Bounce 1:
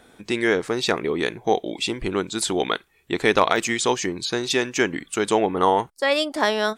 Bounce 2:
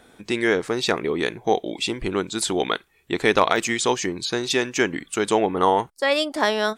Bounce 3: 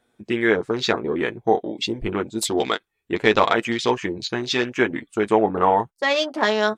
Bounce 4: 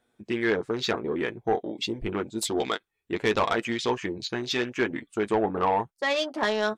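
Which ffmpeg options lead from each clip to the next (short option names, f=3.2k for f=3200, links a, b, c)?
-af anull
-af "afwtdn=0.0282,flanger=delay=8.2:depth=1.4:regen=-28:speed=0.82:shape=triangular,volume=4.5dB"
-af "asoftclip=type=tanh:threshold=-10.5dB,volume=-4.5dB"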